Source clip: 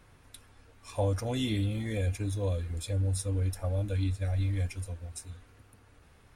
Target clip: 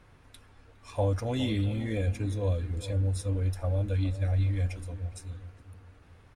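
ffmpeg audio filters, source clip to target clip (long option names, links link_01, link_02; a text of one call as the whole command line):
ffmpeg -i in.wav -filter_complex "[0:a]lowpass=frequency=4000:poles=1,asplit=2[link_01][link_02];[link_02]adelay=411,lowpass=frequency=960:poles=1,volume=-12dB,asplit=2[link_03][link_04];[link_04]adelay=411,lowpass=frequency=960:poles=1,volume=0.4,asplit=2[link_05][link_06];[link_06]adelay=411,lowpass=frequency=960:poles=1,volume=0.4,asplit=2[link_07][link_08];[link_08]adelay=411,lowpass=frequency=960:poles=1,volume=0.4[link_09];[link_03][link_05][link_07][link_09]amix=inputs=4:normalize=0[link_10];[link_01][link_10]amix=inputs=2:normalize=0,volume=1.5dB" out.wav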